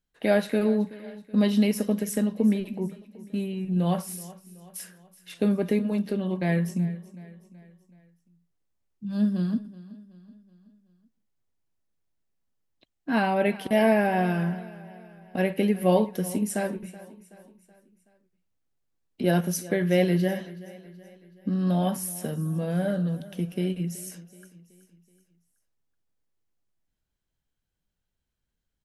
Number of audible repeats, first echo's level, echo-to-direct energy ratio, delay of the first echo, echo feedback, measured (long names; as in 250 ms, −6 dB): 3, −18.5 dB, −17.5 dB, 376 ms, 49%